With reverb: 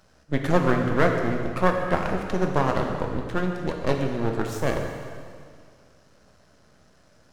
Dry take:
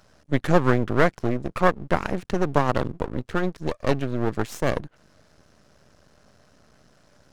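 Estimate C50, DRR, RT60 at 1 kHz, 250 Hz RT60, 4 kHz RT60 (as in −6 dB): 4.0 dB, 2.0 dB, 2.1 s, 2.1 s, 2.0 s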